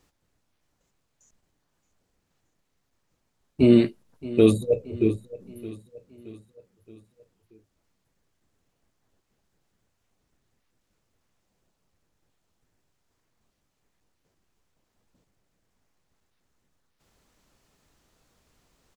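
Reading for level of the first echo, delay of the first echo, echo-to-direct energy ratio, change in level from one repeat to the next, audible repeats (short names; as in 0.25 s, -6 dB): -17.5 dB, 0.623 s, -16.0 dB, -6.0 dB, 3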